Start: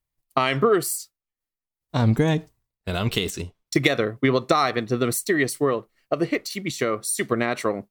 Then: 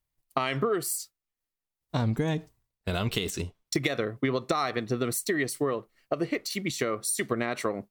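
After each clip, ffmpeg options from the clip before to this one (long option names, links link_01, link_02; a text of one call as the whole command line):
ffmpeg -i in.wav -af "acompressor=threshold=-27dB:ratio=2.5" out.wav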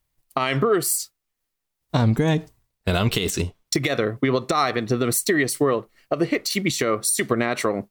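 ffmpeg -i in.wav -af "alimiter=limit=-18dB:level=0:latency=1:release=76,volume=8.5dB" out.wav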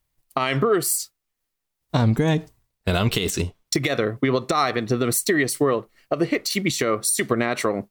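ffmpeg -i in.wav -af anull out.wav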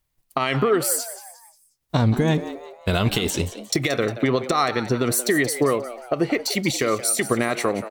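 ffmpeg -i in.wav -filter_complex "[0:a]asplit=5[link_01][link_02][link_03][link_04][link_05];[link_02]adelay=178,afreqshift=120,volume=-13.5dB[link_06];[link_03]adelay=356,afreqshift=240,volume=-21.2dB[link_07];[link_04]adelay=534,afreqshift=360,volume=-29dB[link_08];[link_05]adelay=712,afreqshift=480,volume=-36.7dB[link_09];[link_01][link_06][link_07][link_08][link_09]amix=inputs=5:normalize=0" out.wav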